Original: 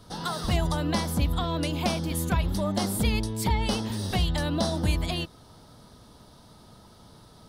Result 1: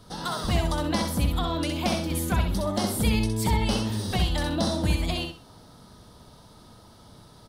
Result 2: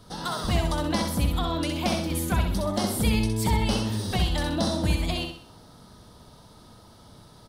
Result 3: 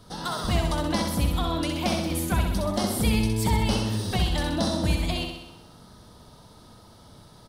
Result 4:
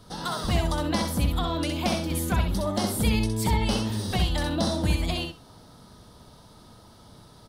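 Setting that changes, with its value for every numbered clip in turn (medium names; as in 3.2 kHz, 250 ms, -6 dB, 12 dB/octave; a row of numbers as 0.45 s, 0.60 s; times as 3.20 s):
feedback delay, feedback: 26%, 41%, 61%, 16%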